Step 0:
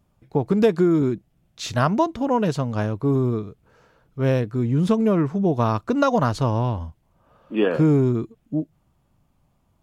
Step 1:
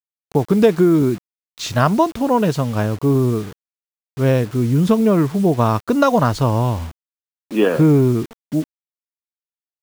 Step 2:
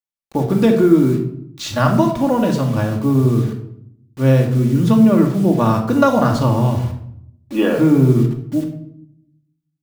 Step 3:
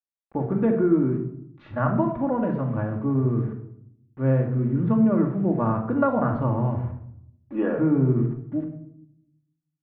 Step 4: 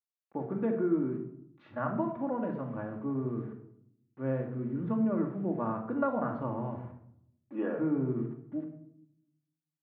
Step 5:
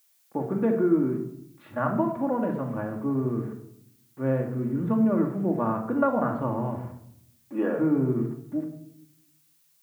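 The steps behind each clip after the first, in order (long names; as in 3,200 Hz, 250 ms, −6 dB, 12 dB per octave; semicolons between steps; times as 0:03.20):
bit reduction 7 bits; level +4.5 dB
convolution reverb RT60 0.70 s, pre-delay 3 ms, DRR 1.5 dB; level −2.5 dB
low-pass filter 1,800 Hz 24 dB per octave; level −8 dB
high-pass filter 180 Hz 12 dB per octave; level −8 dB
background noise blue −71 dBFS; level +6.5 dB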